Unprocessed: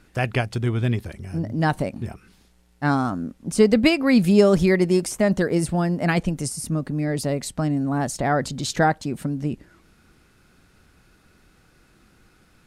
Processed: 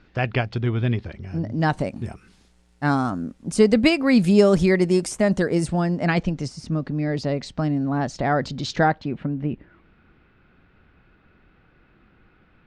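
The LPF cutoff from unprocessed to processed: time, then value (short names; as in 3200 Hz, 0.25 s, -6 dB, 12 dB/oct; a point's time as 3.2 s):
LPF 24 dB/oct
1.21 s 4700 Hz
2.01 s 9700 Hz
5.44 s 9700 Hz
6.41 s 5400 Hz
8.76 s 5400 Hz
9.2 s 3000 Hz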